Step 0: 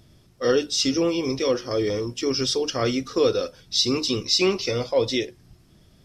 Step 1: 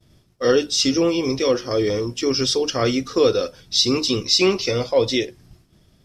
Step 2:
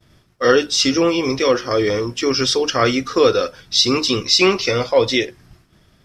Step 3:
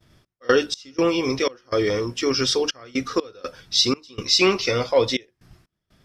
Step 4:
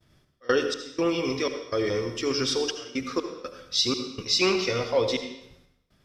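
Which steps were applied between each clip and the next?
expander -49 dBFS; gain +3.5 dB
bell 1500 Hz +8.5 dB 1.8 oct; gain +1 dB
step gate "x.x.xx.xxx" 61 bpm -24 dB; gain -3.5 dB
reverb RT60 0.80 s, pre-delay 62 ms, DRR 7 dB; gain -5.5 dB

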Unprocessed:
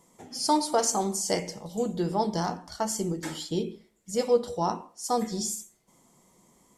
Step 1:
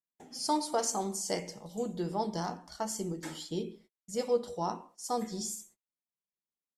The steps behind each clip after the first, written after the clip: gate -51 dBFS, range -40 dB; bell 95 Hz -12 dB 0.33 oct; gain -6 dB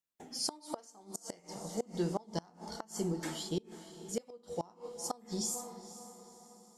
diffused feedback echo 0.49 s, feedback 46%, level -15 dB; flipped gate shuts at -24 dBFS, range -26 dB; gain +1.5 dB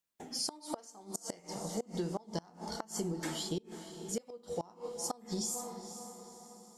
compressor 6:1, threshold -36 dBFS, peak gain reduction 8 dB; gain +3.5 dB

